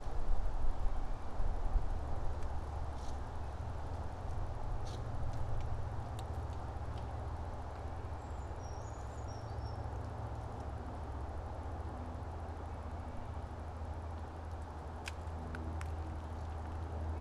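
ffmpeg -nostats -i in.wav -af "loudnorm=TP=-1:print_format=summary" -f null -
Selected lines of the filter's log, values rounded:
Input Integrated:    -43.8 LUFS
Input True Peak:     -19.7 dBTP
Input LRA:             1.6 LU
Input Threshold:     -53.8 LUFS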